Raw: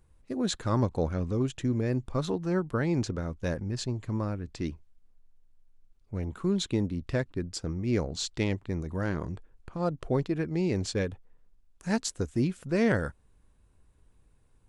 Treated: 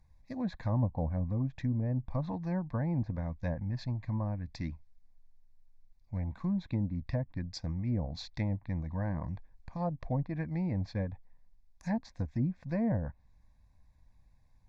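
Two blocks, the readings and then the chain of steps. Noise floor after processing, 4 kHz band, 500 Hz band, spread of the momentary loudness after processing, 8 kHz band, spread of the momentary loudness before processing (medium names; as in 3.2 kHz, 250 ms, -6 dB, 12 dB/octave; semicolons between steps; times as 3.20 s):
-63 dBFS, -12.0 dB, -10.0 dB, 8 LU, under -20 dB, 8 LU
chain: static phaser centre 2 kHz, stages 8; low-pass that closes with the level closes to 620 Hz, closed at -26.5 dBFS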